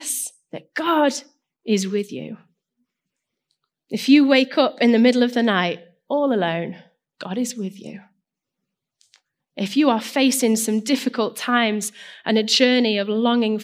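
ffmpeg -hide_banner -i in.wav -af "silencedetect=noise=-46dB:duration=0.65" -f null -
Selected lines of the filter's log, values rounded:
silence_start: 2.42
silence_end: 3.51 | silence_duration: 1.10
silence_start: 8.06
silence_end: 9.01 | silence_duration: 0.95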